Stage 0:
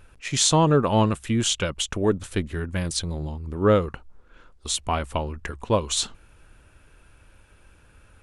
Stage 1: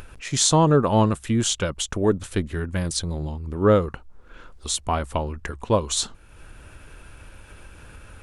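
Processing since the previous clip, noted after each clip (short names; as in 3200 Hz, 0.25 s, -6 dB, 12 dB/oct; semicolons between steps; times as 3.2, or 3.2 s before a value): dynamic EQ 2600 Hz, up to -6 dB, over -42 dBFS, Q 1.7; upward compressor, threshold -35 dBFS; gain +1.5 dB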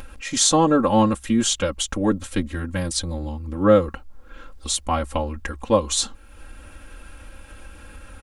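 comb 3.7 ms, depth 98%; requantised 12-bit, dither none; gain -1 dB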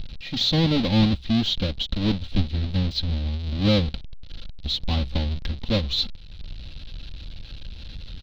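half-waves squared off; de-esser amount 85%; EQ curve 160 Hz 0 dB, 320 Hz -9 dB, 740 Hz -11 dB, 1100 Hz -14 dB, 1800 Hz -9 dB, 4000 Hz +13 dB, 8300 Hz -24 dB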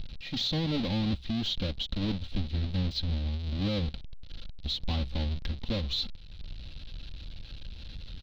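limiter -17 dBFS, peak gain reduction 8.5 dB; gain -5 dB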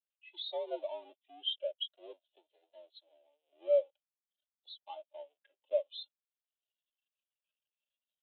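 mistuned SSB +66 Hz 430–3300 Hz; vibrato 0.5 Hz 65 cents; spectral expander 2.5:1; gain +5.5 dB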